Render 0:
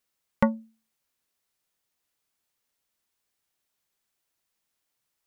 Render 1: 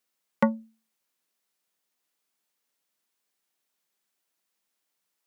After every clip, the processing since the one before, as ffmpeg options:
-af "highpass=f=160:w=0.5412,highpass=f=160:w=1.3066"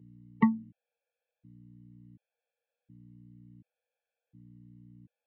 -af "aeval=exprs='val(0)+0.00398*(sin(2*PI*60*n/s)+sin(2*PI*2*60*n/s)/2+sin(2*PI*3*60*n/s)/3+sin(2*PI*4*60*n/s)/4+sin(2*PI*5*60*n/s)/5)':c=same,highpass=f=110:w=0.5412,highpass=f=110:w=1.3066,equalizer=f=150:t=q:w=4:g=6,equalizer=f=480:t=q:w=4:g=10,equalizer=f=1.3k:t=q:w=4:g=-9,lowpass=f=2.8k:w=0.5412,lowpass=f=2.8k:w=1.3066,afftfilt=real='re*gt(sin(2*PI*0.69*pts/sr)*(1-2*mod(floor(b*sr/1024/450),2)),0)':imag='im*gt(sin(2*PI*0.69*pts/sr)*(1-2*mod(floor(b*sr/1024/450),2)),0)':win_size=1024:overlap=0.75"

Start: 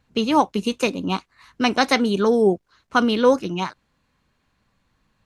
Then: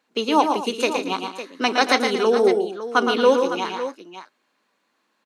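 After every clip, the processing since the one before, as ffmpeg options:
-filter_complex "[0:a]highpass=f=280:w=0.5412,highpass=f=280:w=1.3066,asplit=2[a][b];[b]aecho=0:1:115|148|228|556:0.501|0.266|0.178|0.251[c];[a][c]amix=inputs=2:normalize=0"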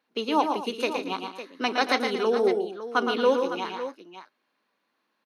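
-af "equalizer=f=7.5k:t=o:w=0.41:g=-12.5,volume=-5.5dB"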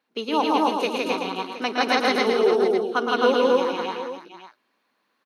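-af "aecho=1:1:163.3|262.4:0.891|0.891"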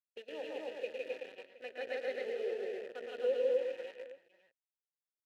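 -filter_complex "[0:a]acrusher=bits=5:dc=4:mix=0:aa=0.000001,asplit=3[a][b][c];[a]bandpass=f=530:t=q:w=8,volume=0dB[d];[b]bandpass=f=1.84k:t=q:w=8,volume=-6dB[e];[c]bandpass=f=2.48k:t=q:w=8,volume=-9dB[f];[d][e][f]amix=inputs=3:normalize=0,volume=-9dB"

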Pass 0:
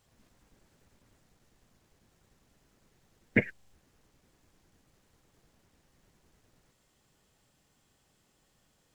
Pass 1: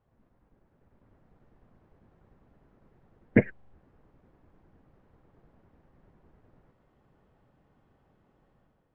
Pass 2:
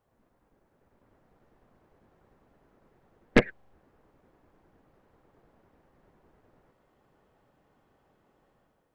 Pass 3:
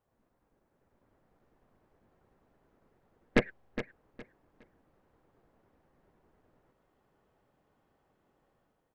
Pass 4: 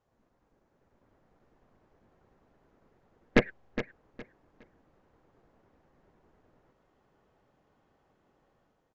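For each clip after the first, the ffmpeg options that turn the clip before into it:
-af "lowpass=1.2k,dynaudnorm=f=710:g=3:m=8dB,volume=-1dB"
-af "bass=f=250:g=-8,treble=f=4k:g=4,aeval=exprs='0.335*(cos(1*acos(clip(val(0)/0.335,-1,1)))-cos(1*PI/2))+0.119*(cos(4*acos(clip(val(0)/0.335,-1,1)))-cos(4*PI/2))+0.0299*(cos(6*acos(clip(val(0)/0.335,-1,1)))-cos(6*PI/2))':c=same,volume=2dB"
-af "aecho=1:1:413|826|1239:0.266|0.0639|0.0153,volume=-5.5dB"
-af "aresample=16000,aresample=44100,volume=3dB"

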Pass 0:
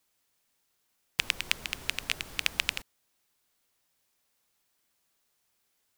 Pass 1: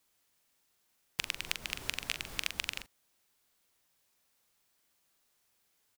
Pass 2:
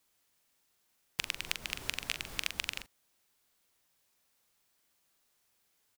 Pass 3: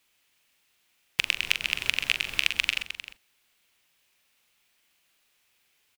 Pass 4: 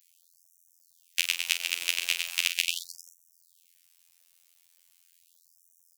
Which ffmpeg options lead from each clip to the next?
-filter_complex "[0:a]acompressor=threshold=-30dB:ratio=4,asplit=2[a][b];[b]adelay=43,volume=-8.5dB[c];[a][c]amix=inputs=2:normalize=0"
-af anull
-filter_complex "[0:a]equalizer=f=2.6k:w=1.2:g=10.5,asplit=2[a][b];[b]aecho=0:1:129|307:0.237|0.251[c];[a][c]amix=inputs=2:normalize=0,volume=2dB"
-af "afftfilt=real='hypot(re,im)*cos(PI*b)':imag='0':win_size=2048:overlap=0.75,bass=f=250:g=-3,treble=f=4k:g=15,afftfilt=real='re*gte(b*sr/1024,280*pow(5600/280,0.5+0.5*sin(2*PI*0.39*pts/sr)))':imag='im*gte(b*sr/1024,280*pow(5600/280,0.5+0.5*sin(2*PI*0.39*pts/sr)))':win_size=1024:overlap=0.75,volume=-3dB"

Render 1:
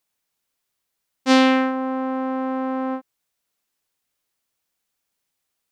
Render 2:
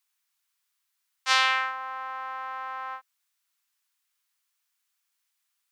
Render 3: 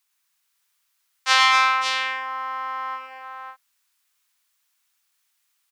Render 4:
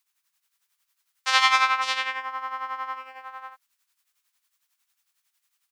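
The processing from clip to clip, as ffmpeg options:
-af "highpass=f=1k:w=0.5412,highpass=f=1k:w=1.3066"
-af "aecho=1:1:108|241|551:0.596|0.473|0.501,volume=4.5dB"
-af "tremolo=f=11:d=0.66"

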